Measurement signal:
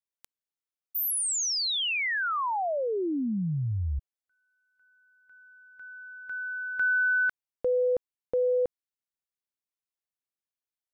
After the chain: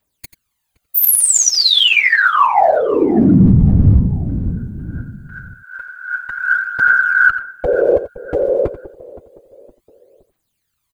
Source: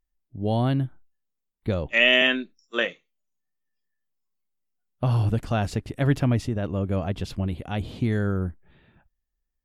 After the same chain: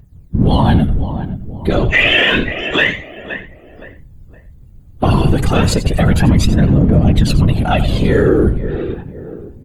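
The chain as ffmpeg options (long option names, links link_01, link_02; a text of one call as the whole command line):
ffmpeg -i in.wav -filter_complex "[0:a]lowshelf=frequency=130:gain=7.5,bandreject=frequency=5500:width=5.9,aecho=1:1:5:0.34,aphaser=in_gain=1:out_gain=1:delay=3:decay=0.72:speed=0.29:type=triangular,asplit=2[link_01][link_02];[link_02]adelay=517,lowpass=frequency=1100:poles=1,volume=-18.5dB,asplit=2[link_03][link_04];[link_04]adelay=517,lowpass=frequency=1100:poles=1,volume=0.43,asplit=2[link_05][link_06];[link_06]adelay=517,lowpass=frequency=1100:poles=1,volume=0.43[link_07];[link_03][link_05][link_07]amix=inputs=3:normalize=0[link_08];[link_01][link_08]amix=inputs=2:normalize=0,acompressor=threshold=-28dB:ratio=2.5:attack=0.49:release=51:knee=6:detection=peak,afftfilt=real='hypot(re,im)*cos(2*PI*random(0))':imag='hypot(re,im)*sin(2*PI*random(1))':win_size=512:overlap=0.75,asplit=2[link_09][link_10];[link_10]aecho=0:1:88:0.211[link_11];[link_09][link_11]amix=inputs=2:normalize=0,alimiter=level_in=25dB:limit=-1dB:release=50:level=0:latency=1,volume=-1dB" out.wav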